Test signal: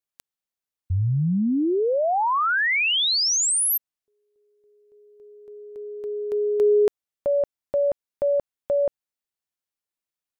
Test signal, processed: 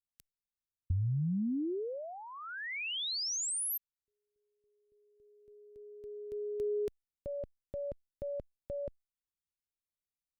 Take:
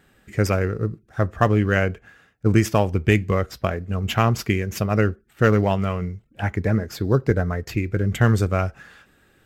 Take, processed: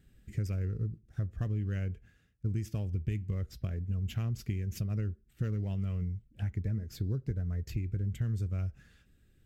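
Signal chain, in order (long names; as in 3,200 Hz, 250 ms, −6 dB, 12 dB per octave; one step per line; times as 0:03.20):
in parallel at +0.5 dB: speech leveller within 4 dB 2 s
on the sum: guitar amp tone stack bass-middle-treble 10-0-1
downward compressor 5 to 1, threshold −33 dBFS
level +2.5 dB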